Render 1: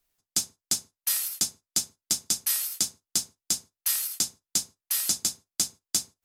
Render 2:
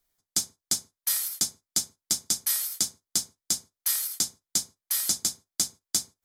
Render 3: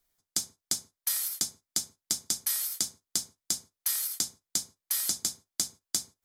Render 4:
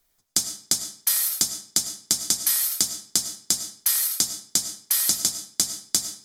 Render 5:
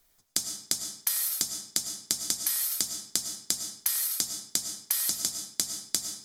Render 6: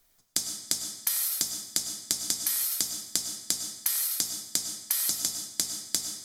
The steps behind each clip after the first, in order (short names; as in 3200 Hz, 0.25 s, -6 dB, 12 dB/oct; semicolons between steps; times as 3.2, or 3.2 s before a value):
notch 2700 Hz, Q 5.8
compressor, threshold -25 dBFS, peak gain reduction 5.5 dB
reverb RT60 0.45 s, pre-delay 60 ms, DRR 9.5 dB; gain +7.5 dB
compressor, threshold -28 dBFS, peak gain reduction 11.5 dB; gain +2.5 dB
non-linear reverb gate 0.4 s falling, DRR 9 dB